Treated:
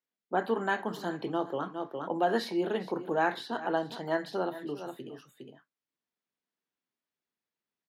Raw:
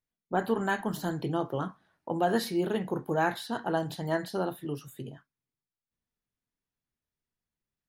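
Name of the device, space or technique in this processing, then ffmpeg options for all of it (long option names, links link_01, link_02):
ducked delay: -filter_complex "[0:a]asplit=3[link_01][link_02][link_03];[link_02]adelay=410,volume=-4dB[link_04];[link_03]apad=whole_len=365707[link_05];[link_04][link_05]sidechaincompress=threshold=-45dB:ratio=6:attack=12:release=130[link_06];[link_01][link_06]amix=inputs=2:normalize=0,highpass=120,acrossover=split=210 5600:gain=0.178 1 0.224[link_07][link_08][link_09];[link_07][link_08][link_09]amix=inputs=3:normalize=0"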